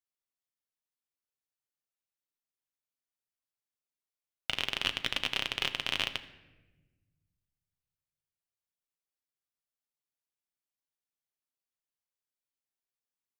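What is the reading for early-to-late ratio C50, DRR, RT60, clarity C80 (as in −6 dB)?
14.0 dB, 8.0 dB, 1.2 s, 15.5 dB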